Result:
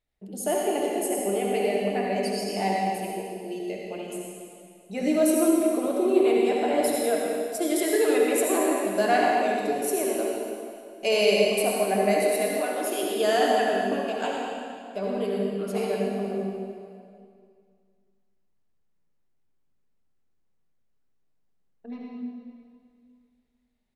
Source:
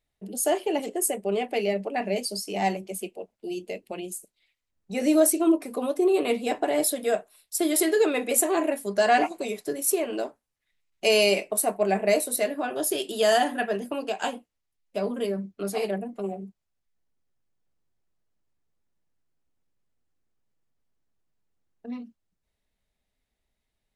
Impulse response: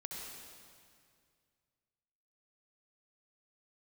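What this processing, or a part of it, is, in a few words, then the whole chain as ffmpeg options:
swimming-pool hall: -filter_complex "[1:a]atrim=start_sample=2205[link_01];[0:a][link_01]afir=irnorm=-1:irlink=0,highshelf=frequency=4500:gain=-6,asettb=1/sr,asplit=3[link_02][link_03][link_04];[link_02]atrim=end=12.574[link_05];[link_03]atrim=start=12.57:end=13.03,asetpts=PTS-STARTPTS,afade=type=in:duration=0.004:curve=qsin,afade=type=out:start_time=0.456:duration=0.004:curve=qsin,highpass=290[link_06];[link_04]atrim=start=13.026[link_07];[link_05][link_06]acrossfade=duration=0.004:curve1=hsin:curve2=qsin[link_08];[link_08][link_07]acrossfade=duration=0.004:curve1=qsin:curve2=hsin,aecho=1:1:233|466|699|932:0.0944|0.0481|0.0246|0.0125,volume=2.5dB"

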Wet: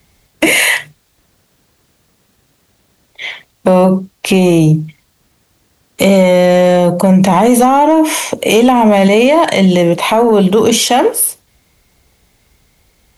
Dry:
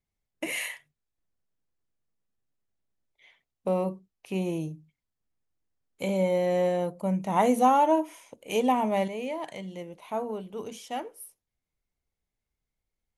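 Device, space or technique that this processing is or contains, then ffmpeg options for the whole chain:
mastering chain: -filter_complex "[0:a]highpass=45,equalizer=frequency=4000:width_type=o:width=0.77:gain=2.5,acrossover=split=340|880[link_01][link_02][link_03];[link_01]acompressor=threshold=-30dB:ratio=4[link_04];[link_02]acompressor=threshold=-32dB:ratio=4[link_05];[link_03]acompressor=threshold=-35dB:ratio=4[link_06];[link_04][link_05][link_06]amix=inputs=3:normalize=0,acompressor=threshold=-34dB:ratio=2,asoftclip=type=tanh:threshold=-25dB,asoftclip=type=hard:threshold=-27.5dB,alimiter=level_in=35.5dB:limit=-1dB:release=50:level=0:latency=1,volume=-1dB"

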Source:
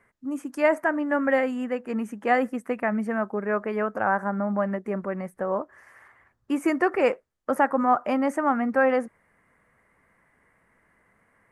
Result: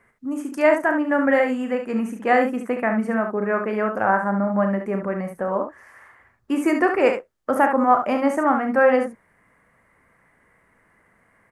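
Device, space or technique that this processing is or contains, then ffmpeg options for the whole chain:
slapback doubling: -filter_complex "[0:a]asplit=3[link_01][link_02][link_03];[link_02]adelay=36,volume=-8.5dB[link_04];[link_03]adelay=70,volume=-7dB[link_05];[link_01][link_04][link_05]amix=inputs=3:normalize=0,volume=3dB"

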